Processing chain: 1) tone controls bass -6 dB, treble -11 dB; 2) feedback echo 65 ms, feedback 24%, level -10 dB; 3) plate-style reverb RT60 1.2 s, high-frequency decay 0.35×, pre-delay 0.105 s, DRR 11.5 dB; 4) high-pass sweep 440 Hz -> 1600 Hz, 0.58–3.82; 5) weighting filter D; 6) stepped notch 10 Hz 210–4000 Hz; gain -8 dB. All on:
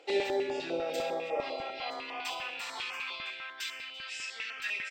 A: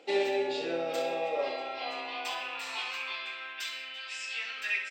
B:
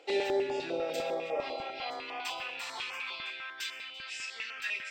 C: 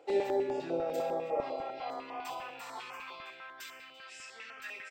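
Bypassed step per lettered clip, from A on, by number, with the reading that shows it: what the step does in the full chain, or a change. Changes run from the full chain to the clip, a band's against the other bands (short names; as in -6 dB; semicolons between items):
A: 6, 125 Hz band -3.0 dB; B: 2, momentary loudness spread change +1 LU; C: 5, 4 kHz band -11.5 dB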